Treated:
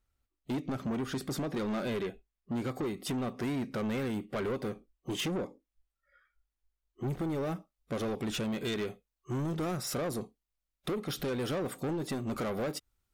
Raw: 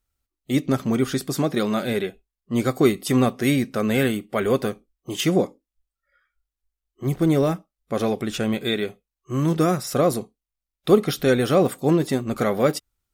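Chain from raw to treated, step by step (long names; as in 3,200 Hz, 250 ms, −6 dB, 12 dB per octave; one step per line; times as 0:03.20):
high-shelf EQ 4,300 Hz −9 dB, from 0:07.10 −3.5 dB
downward compressor 10 to 1, threshold −24 dBFS, peak gain reduction 15 dB
soft clipping −29.5 dBFS, distortion −9 dB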